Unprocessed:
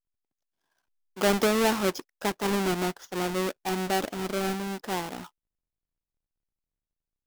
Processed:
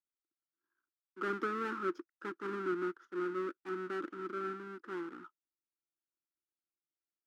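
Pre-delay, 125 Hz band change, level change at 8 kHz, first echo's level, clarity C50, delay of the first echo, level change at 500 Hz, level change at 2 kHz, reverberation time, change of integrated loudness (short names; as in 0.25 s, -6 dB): none, -18.0 dB, under -30 dB, none, none, none, -10.5 dB, -9.5 dB, none, -11.0 dB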